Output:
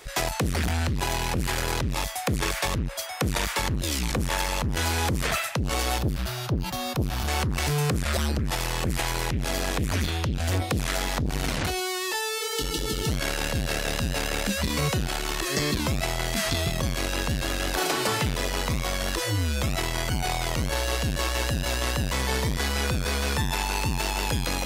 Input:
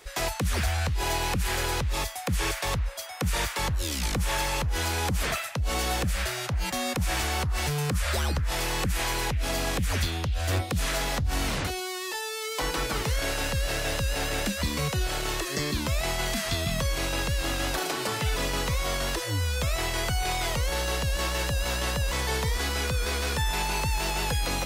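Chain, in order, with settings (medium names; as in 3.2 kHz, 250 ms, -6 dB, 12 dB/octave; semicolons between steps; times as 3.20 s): 5.98–7.28 s: graphic EQ 125/250/500/2000/8000 Hz +6/-6/-6/-10/-10 dB; 12.42–13.09 s: spectral replace 410–2600 Hz before; transformer saturation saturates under 270 Hz; trim +4.5 dB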